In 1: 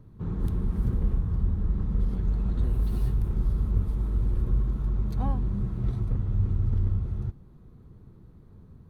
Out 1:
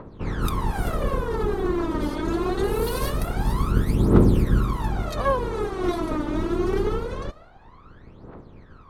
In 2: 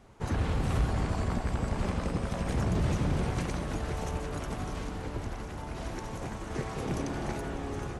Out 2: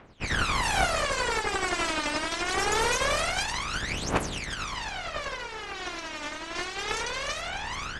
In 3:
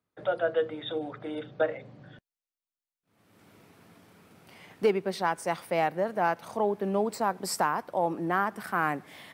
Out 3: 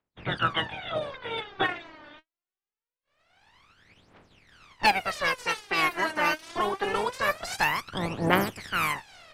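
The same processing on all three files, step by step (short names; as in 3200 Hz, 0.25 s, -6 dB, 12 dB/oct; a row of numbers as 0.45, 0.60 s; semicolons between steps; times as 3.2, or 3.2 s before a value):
spectral limiter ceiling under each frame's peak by 28 dB; phaser 0.24 Hz, delay 3.4 ms, feedback 79%; low-pass opened by the level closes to 2600 Hz, open at -18.5 dBFS; gain -2 dB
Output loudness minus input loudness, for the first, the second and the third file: +4.5, +4.5, +2.0 LU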